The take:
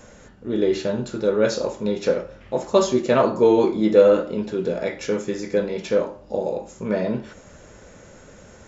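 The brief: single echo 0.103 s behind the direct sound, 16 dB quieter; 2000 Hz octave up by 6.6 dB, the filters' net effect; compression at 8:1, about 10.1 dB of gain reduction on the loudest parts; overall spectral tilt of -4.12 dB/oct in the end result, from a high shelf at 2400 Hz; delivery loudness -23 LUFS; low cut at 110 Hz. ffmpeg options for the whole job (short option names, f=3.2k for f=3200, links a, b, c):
-af "highpass=110,equalizer=f=2k:t=o:g=7,highshelf=f=2.4k:g=3.5,acompressor=threshold=-18dB:ratio=8,aecho=1:1:103:0.158,volume=2dB"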